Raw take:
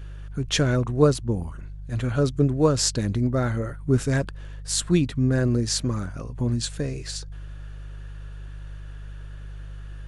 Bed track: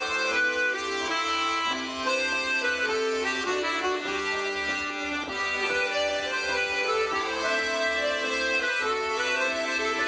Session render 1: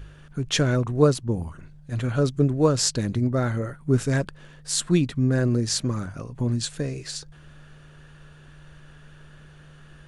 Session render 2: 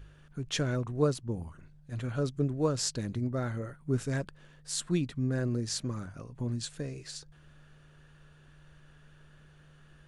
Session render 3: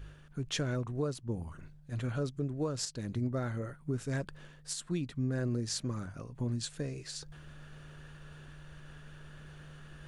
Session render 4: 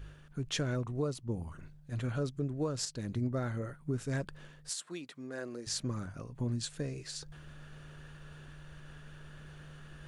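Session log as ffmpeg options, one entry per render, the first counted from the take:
-af "bandreject=f=50:t=h:w=4,bandreject=f=100:t=h:w=4"
-af "volume=-9dB"
-af "alimiter=level_in=0.5dB:limit=-24dB:level=0:latency=1:release=344,volume=-0.5dB,areverse,acompressor=mode=upward:threshold=-41dB:ratio=2.5,areverse"
-filter_complex "[0:a]asettb=1/sr,asplit=3[a][b][c];[a]atrim=end=0.874[d];[b]atrim=start=0.87:end=1.44,asetpts=PTS-STARTPTS,afade=t=in:d=0.004:c=qsin,afade=t=out:st=0.566:d=0.004:c=qsin,bandreject=f=1.6k:w=6.1[e];[c]atrim=start=1.436[f];[d][e]acrossfade=d=0.004:c1=hsin:c2=qsin[g];[g][f]acrossfade=d=0.004:c1=qsin:c2=hsin,asettb=1/sr,asplit=3[h][i][j];[h]atrim=end=4.694[k];[i]atrim=start=4.69:end=5.67,asetpts=PTS-STARTPTS,afade=t=in:d=0.004:c=qsin,afade=t=out:st=0.976:d=0.004:c=qsin,highpass=430[l];[j]atrim=start=5.666[m];[k][l]acrossfade=d=0.004:c1=hsin:c2=qsin[n];[n][m]acrossfade=d=0.004:c1=qsin:c2=hsin"

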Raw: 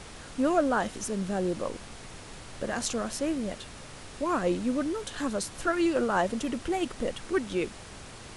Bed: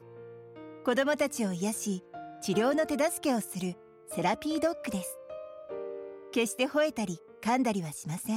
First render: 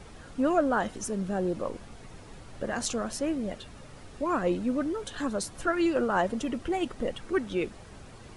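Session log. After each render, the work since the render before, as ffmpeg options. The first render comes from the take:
-af "afftdn=nr=9:nf=-45"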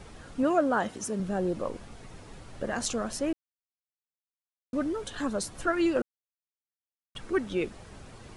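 -filter_complex "[0:a]asettb=1/sr,asplit=3[a][b][c];[a]atrim=end=0.434[d];[b]atrim=start=0.43:end=1.2,asetpts=PTS-STARTPTS,afade=t=in:d=0.004:c=qsin,afade=t=out:st=0.766:d=0.004:c=qsin,highpass=100[e];[c]atrim=start=1.196[f];[d][e]acrossfade=d=0.004:c1=hsin:c2=qsin[g];[g][f]acrossfade=d=0.004:c1=qsin:c2=hsin,asplit=5[h][i][j][k][l];[h]atrim=end=3.33,asetpts=PTS-STARTPTS,afade=t=out:st=3.326:d=0.004:c=hsin[m];[i]atrim=start=3.33:end=4.73,asetpts=PTS-STARTPTS,volume=0[n];[j]atrim=start=4.73:end=6.02,asetpts=PTS-STARTPTS,afade=t=in:d=0.004:c=hsin,afade=t=out:st=1.286:d=0.004:c=hsin[o];[k]atrim=start=6.02:end=7.15,asetpts=PTS-STARTPTS,volume=0[p];[l]atrim=start=7.15,asetpts=PTS-STARTPTS,afade=t=in:d=0.004:c=hsin[q];[m][n][o][p][q]concat=n=5:v=0:a=1"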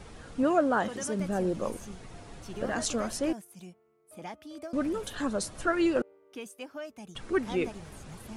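-filter_complex "[1:a]volume=-13.5dB[a];[0:a][a]amix=inputs=2:normalize=0"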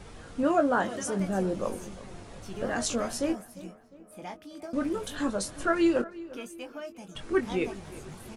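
-filter_complex "[0:a]asplit=2[a][b];[b]adelay=21,volume=-7dB[c];[a][c]amix=inputs=2:normalize=0,asplit=2[d][e];[e]adelay=353,lowpass=f=2.6k:p=1,volume=-17.5dB,asplit=2[f][g];[g]adelay=353,lowpass=f=2.6k:p=1,volume=0.49,asplit=2[h][i];[i]adelay=353,lowpass=f=2.6k:p=1,volume=0.49,asplit=2[j][k];[k]adelay=353,lowpass=f=2.6k:p=1,volume=0.49[l];[d][f][h][j][l]amix=inputs=5:normalize=0"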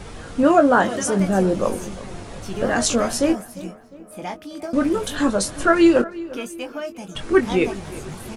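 -af "volume=10dB,alimiter=limit=-3dB:level=0:latency=1"

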